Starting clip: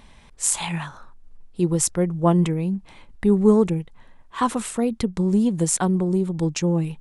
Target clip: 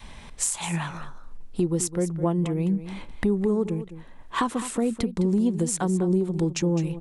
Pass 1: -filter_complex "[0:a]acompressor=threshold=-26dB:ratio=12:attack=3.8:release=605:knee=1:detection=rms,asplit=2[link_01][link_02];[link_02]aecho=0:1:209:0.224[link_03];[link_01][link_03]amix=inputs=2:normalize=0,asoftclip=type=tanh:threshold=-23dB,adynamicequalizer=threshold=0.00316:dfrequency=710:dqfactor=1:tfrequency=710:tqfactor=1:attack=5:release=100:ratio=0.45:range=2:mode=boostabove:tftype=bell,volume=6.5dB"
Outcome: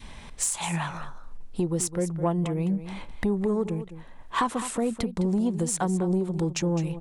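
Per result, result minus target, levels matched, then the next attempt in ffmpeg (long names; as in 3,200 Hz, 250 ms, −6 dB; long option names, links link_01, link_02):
soft clipping: distortion +12 dB; 1,000 Hz band +3.5 dB
-filter_complex "[0:a]acompressor=threshold=-26dB:ratio=12:attack=3.8:release=605:knee=1:detection=rms,asplit=2[link_01][link_02];[link_02]aecho=0:1:209:0.224[link_03];[link_01][link_03]amix=inputs=2:normalize=0,asoftclip=type=tanh:threshold=-16dB,adynamicequalizer=threshold=0.00316:dfrequency=710:dqfactor=1:tfrequency=710:tqfactor=1:attack=5:release=100:ratio=0.45:range=2:mode=boostabove:tftype=bell,volume=6.5dB"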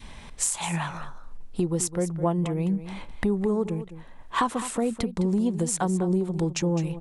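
1,000 Hz band +3.5 dB
-filter_complex "[0:a]acompressor=threshold=-26dB:ratio=12:attack=3.8:release=605:knee=1:detection=rms,asplit=2[link_01][link_02];[link_02]aecho=0:1:209:0.224[link_03];[link_01][link_03]amix=inputs=2:normalize=0,asoftclip=type=tanh:threshold=-16dB,adynamicequalizer=threshold=0.00316:dfrequency=330:dqfactor=1:tfrequency=330:tqfactor=1:attack=5:release=100:ratio=0.45:range=2:mode=boostabove:tftype=bell,volume=6.5dB"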